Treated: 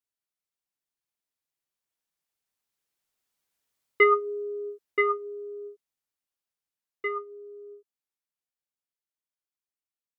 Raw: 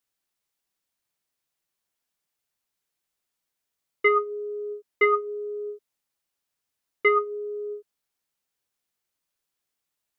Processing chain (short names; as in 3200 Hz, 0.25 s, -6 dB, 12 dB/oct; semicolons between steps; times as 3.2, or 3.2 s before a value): Doppler pass-by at 3.7, 5 m/s, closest 4 m; gain +2 dB